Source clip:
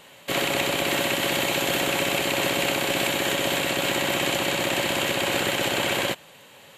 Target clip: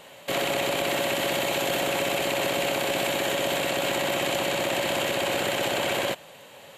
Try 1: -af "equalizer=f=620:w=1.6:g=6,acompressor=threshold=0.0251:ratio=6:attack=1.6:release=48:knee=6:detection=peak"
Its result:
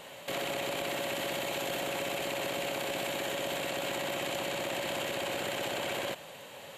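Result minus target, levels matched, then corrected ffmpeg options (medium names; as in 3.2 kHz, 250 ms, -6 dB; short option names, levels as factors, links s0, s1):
compression: peak gain reduction +9 dB
-af "equalizer=f=620:w=1.6:g=6,acompressor=threshold=0.0841:ratio=6:attack=1.6:release=48:knee=6:detection=peak"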